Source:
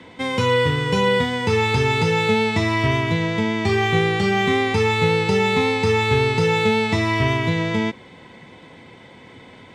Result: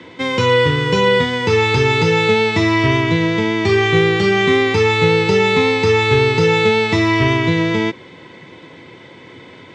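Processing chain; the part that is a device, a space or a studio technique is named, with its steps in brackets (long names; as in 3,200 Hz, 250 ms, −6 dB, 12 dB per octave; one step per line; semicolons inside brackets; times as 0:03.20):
car door speaker (loudspeaker in its box 95–7,200 Hz, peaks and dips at 220 Hz −6 dB, 340 Hz +5 dB, 760 Hz −6 dB)
level +5 dB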